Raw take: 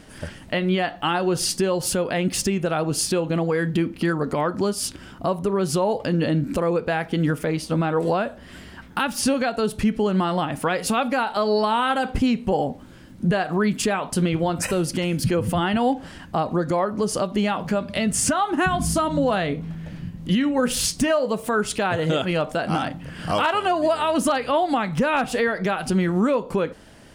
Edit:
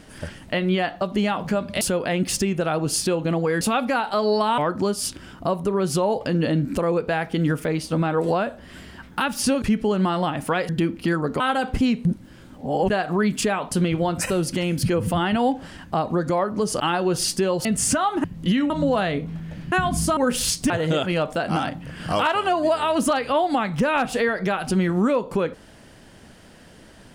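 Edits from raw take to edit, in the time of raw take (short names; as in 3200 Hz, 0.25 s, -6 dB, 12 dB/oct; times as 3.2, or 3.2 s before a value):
1.01–1.86 swap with 17.21–18.01
3.66–4.37 swap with 10.84–11.81
9.41–9.77 cut
12.46–13.31 reverse
18.6–19.05 swap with 20.07–20.53
21.06–21.89 cut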